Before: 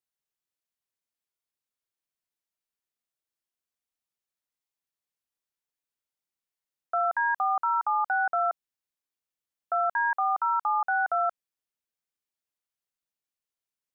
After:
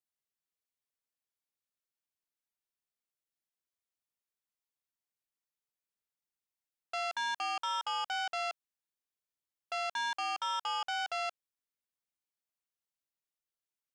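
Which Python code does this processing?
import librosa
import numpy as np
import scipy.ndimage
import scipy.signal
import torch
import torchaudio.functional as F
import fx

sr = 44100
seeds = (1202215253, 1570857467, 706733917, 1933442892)

y = fx.transformer_sat(x, sr, knee_hz=2400.0)
y = y * 10.0 ** (-5.0 / 20.0)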